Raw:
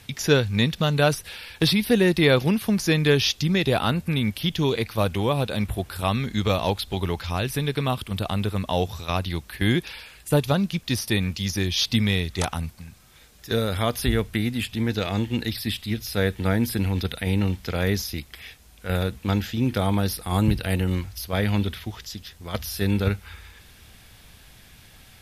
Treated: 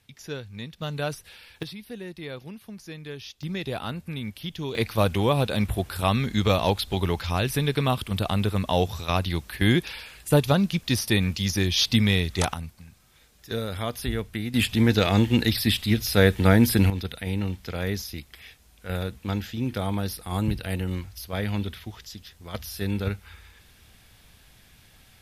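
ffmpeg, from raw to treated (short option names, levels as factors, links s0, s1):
-af "asetnsamples=n=441:p=0,asendcmd='0.82 volume volume -9.5dB;1.63 volume volume -19dB;3.43 volume volume -9.5dB;4.75 volume volume 1dB;12.54 volume volume -6dB;14.54 volume volume 5dB;16.9 volume volume -5dB',volume=0.158"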